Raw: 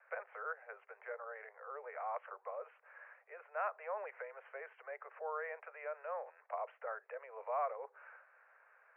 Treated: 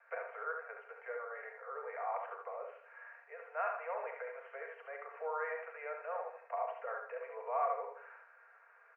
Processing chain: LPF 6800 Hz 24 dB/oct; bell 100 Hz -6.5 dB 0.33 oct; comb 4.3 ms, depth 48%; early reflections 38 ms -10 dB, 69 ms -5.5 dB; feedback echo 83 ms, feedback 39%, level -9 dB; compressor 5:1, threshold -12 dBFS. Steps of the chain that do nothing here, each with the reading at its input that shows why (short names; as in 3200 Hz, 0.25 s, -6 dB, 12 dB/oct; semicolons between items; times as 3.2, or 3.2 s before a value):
LPF 6800 Hz: input band ends at 2600 Hz; bell 100 Hz: input band starts at 380 Hz; compressor, threshold -12 dBFS: input peak -23.5 dBFS